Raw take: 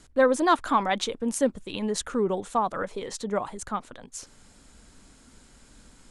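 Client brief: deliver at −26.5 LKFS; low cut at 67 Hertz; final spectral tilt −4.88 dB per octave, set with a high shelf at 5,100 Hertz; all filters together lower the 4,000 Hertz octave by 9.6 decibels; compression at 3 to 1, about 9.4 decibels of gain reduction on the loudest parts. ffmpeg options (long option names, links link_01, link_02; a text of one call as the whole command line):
ffmpeg -i in.wav -af "highpass=67,equalizer=frequency=4000:width_type=o:gain=-8.5,highshelf=frequency=5100:gain=-8,acompressor=threshold=-29dB:ratio=3,volume=7dB" out.wav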